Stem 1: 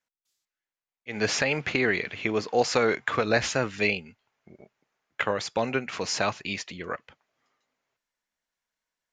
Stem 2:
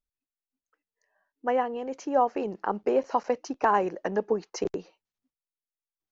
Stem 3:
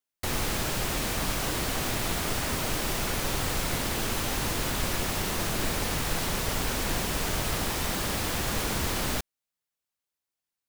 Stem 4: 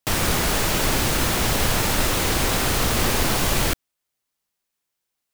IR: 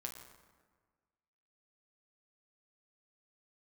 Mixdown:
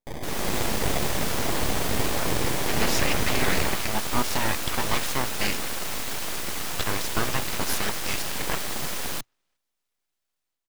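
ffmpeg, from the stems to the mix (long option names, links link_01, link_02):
-filter_complex "[0:a]alimiter=limit=-16.5dB:level=0:latency=1:release=336,adelay=1600,volume=-3dB[link_01];[1:a]volume=-17.5dB[link_02];[2:a]highpass=frequency=60:width=0.5412,highpass=frequency=60:width=1.3066,volume=-6dB[link_03];[3:a]acrossover=split=150[link_04][link_05];[link_05]acompressor=threshold=-21dB:ratio=6[link_06];[link_04][link_06]amix=inputs=2:normalize=0,acrusher=samples=32:mix=1:aa=0.000001,volume=-10dB[link_07];[link_01][link_02][link_03][link_07]amix=inputs=4:normalize=0,dynaudnorm=framelen=140:gausssize=5:maxgain=8dB,aeval=exprs='abs(val(0))':channel_layout=same"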